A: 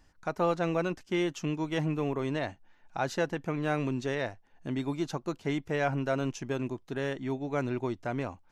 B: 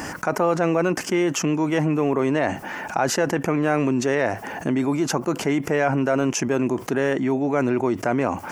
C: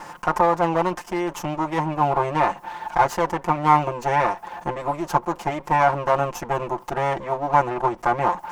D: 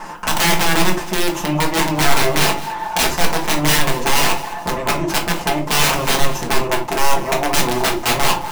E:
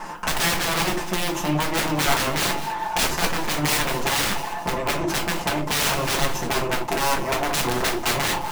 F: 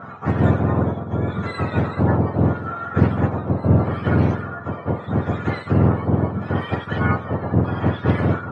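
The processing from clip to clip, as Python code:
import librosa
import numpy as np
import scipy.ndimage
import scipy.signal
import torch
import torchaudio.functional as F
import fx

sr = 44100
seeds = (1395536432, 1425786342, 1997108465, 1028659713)

y1 = scipy.signal.sosfilt(scipy.signal.butter(2, 180.0, 'highpass', fs=sr, output='sos'), x)
y1 = fx.peak_eq(y1, sr, hz=3800.0, db=-13.5, octaves=0.56)
y1 = fx.env_flatten(y1, sr, amount_pct=70)
y1 = y1 * librosa.db_to_amplitude(6.5)
y2 = fx.lower_of_two(y1, sr, delay_ms=5.7)
y2 = fx.peak_eq(y2, sr, hz=930.0, db=15.0, octaves=0.77)
y2 = fx.upward_expand(y2, sr, threshold_db=-34.0, expansion=1.5)
y2 = y2 * librosa.db_to_amplitude(-2.0)
y3 = (np.mod(10.0 ** (16.5 / 20.0) * y2 + 1.0, 2.0) - 1.0) / 10.0 ** (16.5 / 20.0)
y3 = fx.echo_feedback(y3, sr, ms=212, feedback_pct=34, wet_db=-17)
y3 = fx.room_shoebox(y3, sr, seeds[0], volume_m3=210.0, walls='furnished', distance_m=1.5)
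y3 = y3 * librosa.db_to_amplitude(4.0)
y4 = np.minimum(y3, 2.0 * 10.0 ** (-16.5 / 20.0) - y3)
y4 = y4 * librosa.db_to_amplitude(-2.5)
y5 = fx.octave_mirror(y4, sr, pivot_hz=1100.0)
y5 = fx.filter_lfo_lowpass(y5, sr, shape='sine', hz=0.77, low_hz=890.0, high_hz=2200.0, q=1.0)
y5 = fx.doppler_dist(y5, sr, depth_ms=0.21)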